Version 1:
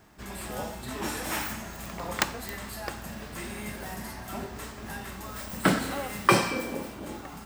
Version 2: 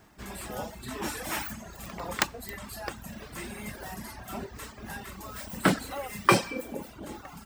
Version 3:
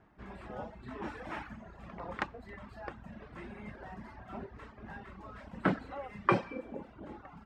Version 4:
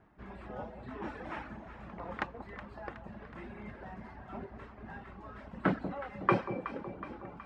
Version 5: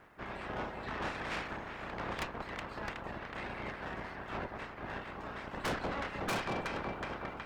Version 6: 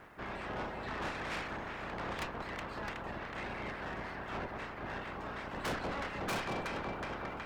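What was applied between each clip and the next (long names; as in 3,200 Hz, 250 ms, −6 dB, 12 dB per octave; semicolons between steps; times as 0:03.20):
reverb reduction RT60 0.97 s
low-pass filter 1,900 Hz 12 dB per octave; level −5.5 dB
high-shelf EQ 5,800 Hz −10 dB; delay that swaps between a low-pass and a high-pass 185 ms, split 890 Hz, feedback 75%, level −9.5 dB
ceiling on every frequency bin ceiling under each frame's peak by 17 dB; tube saturation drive 40 dB, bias 0.65; level +8 dB
in parallel at 0 dB: brickwall limiter −39.5 dBFS, peak gain reduction 11 dB; on the sum: soft clipping −30 dBFS, distortion −17 dB; level −1.5 dB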